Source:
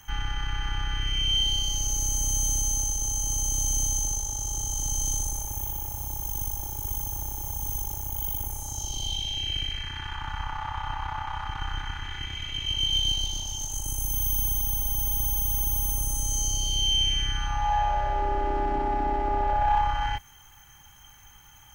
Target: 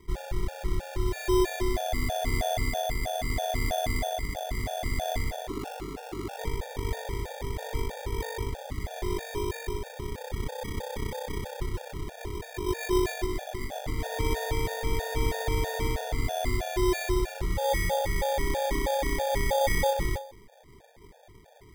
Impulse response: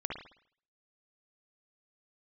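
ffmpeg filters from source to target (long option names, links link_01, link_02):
-filter_complex "[0:a]bandreject=frequency=209.7:width_type=h:width=4,bandreject=frequency=419.4:width_type=h:width=4,bandreject=frequency=629.1:width_type=h:width=4,bandreject=frequency=838.8:width_type=h:width=4,bandreject=frequency=1048.5:width_type=h:width=4,bandreject=frequency=1258.2:width_type=h:width=4,bandreject=frequency=1467.9:width_type=h:width=4,bandreject=frequency=1677.6:width_type=h:width=4,bandreject=frequency=1887.3:width_type=h:width=4,bandreject=frequency=2097:width_type=h:width=4,bandreject=frequency=2306.7:width_type=h:width=4,bandreject=frequency=2516.4:width_type=h:width=4,bandreject=frequency=2726.1:width_type=h:width=4,bandreject=frequency=2935.8:width_type=h:width=4,bandreject=frequency=3145.5:width_type=h:width=4,bandreject=frequency=3355.2:width_type=h:width=4,bandreject=frequency=3564.9:width_type=h:width=4,bandreject=frequency=3774.6:width_type=h:width=4,bandreject=frequency=3984.3:width_type=h:width=4,bandreject=frequency=4194:width_type=h:width=4,bandreject=frequency=4403.7:width_type=h:width=4,bandreject=frequency=4613.4:width_type=h:width=4,bandreject=frequency=4823.1:width_type=h:width=4,bandreject=frequency=5032.8:width_type=h:width=4,bandreject=frequency=5242.5:width_type=h:width=4,bandreject=frequency=5452.2:width_type=h:width=4,bandreject=frequency=5661.9:width_type=h:width=4,bandreject=frequency=5871.6:width_type=h:width=4,bandreject=frequency=6081.3:width_type=h:width=4,bandreject=frequency=6291:width_type=h:width=4,bandreject=frequency=6500.7:width_type=h:width=4,bandreject=frequency=6710.4:width_type=h:width=4,bandreject=frequency=6920.1:width_type=h:width=4,bandreject=frequency=7129.8:width_type=h:width=4,bandreject=frequency=7339.5:width_type=h:width=4,bandreject=frequency=7549.2:width_type=h:width=4,bandreject=frequency=7758.9:width_type=h:width=4,bandreject=frequency=7968.6:width_type=h:width=4,acrusher=samples=32:mix=1:aa=0.000001,asplit=3[link_01][link_02][link_03];[link_01]afade=type=out:start_time=5.47:duration=0.02[link_04];[link_02]aeval=exprs='val(0)*sin(2*PI*350*n/s)':channel_layout=same,afade=type=in:start_time=5.47:duration=0.02,afade=type=out:start_time=6.37:duration=0.02[link_05];[link_03]afade=type=in:start_time=6.37:duration=0.02[link_06];[link_04][link_05][link_06]amix=inputs=3:normalize=0,asplit=2[link_07][link_08];[1:a]atrim=start_sample=2205,asetrate=57330,aresample=44100,lowshelf=frequency=200:gain=7[link_09];[link_08][link_09]afir=irnorm=-1:irlink=0,volume=-13.5dB[link_10];[link_07][link_10]amix=inputs=2:normalize=0,afftfilt=real='re*gt(sin(2*PI*3.1*pts/sr)*(1-2*mod(floor(b*sr/1024/470),2)),0)':imag='im*gt(sin(2*PI*3.1*pts/sr)*(1-2*mod(floor(b*sr/1024/470),2)),0)':win_size=1024:overlap=0.75"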